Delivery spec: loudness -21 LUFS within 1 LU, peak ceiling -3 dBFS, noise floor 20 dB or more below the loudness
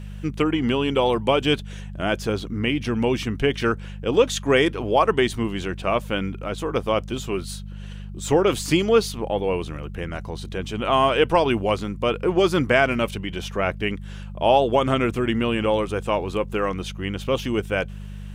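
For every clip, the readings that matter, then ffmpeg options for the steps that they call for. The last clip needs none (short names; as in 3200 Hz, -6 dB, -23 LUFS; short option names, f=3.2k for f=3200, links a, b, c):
hum 50 Hz; harmonics up to 200 Hz; hum level -33 dBFS; loudness -22.5 LUFS; peak -4.0 dBFS; loudness target -21.0 LUFS
-> -af "bandreject=f=50:t=h:w=4,bandreject=f=100:t=h:w=4,bandreject=f=150:t=h:w=4,bandreject=f=200:t=h:w=4"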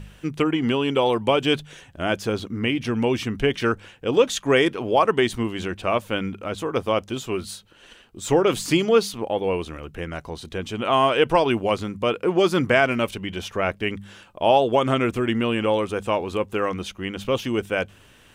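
hum none; loudness -23.0 LUFS; peak -4.0 dBFS; loudness target -21.0 LUFS
-> -af "volume=2dB,alimiter=limit=-3dB:level=0:latency=1"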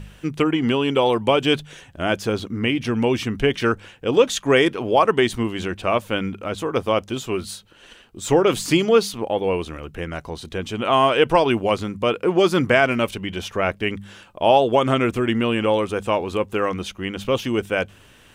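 loudness -21.0 LUFS; peak -3.0 dBFS; noise floor -50 dBFS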